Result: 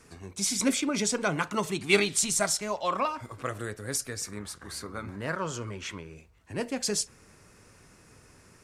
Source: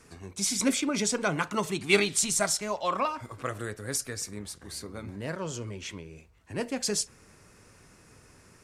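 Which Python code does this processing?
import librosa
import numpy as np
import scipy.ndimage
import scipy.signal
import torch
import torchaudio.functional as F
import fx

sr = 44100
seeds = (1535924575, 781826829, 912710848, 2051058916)

y = fx.peak_eq(x, sr, hz=1300.0, db=9.5, octaves=1.0, at=(4.24, 6.14))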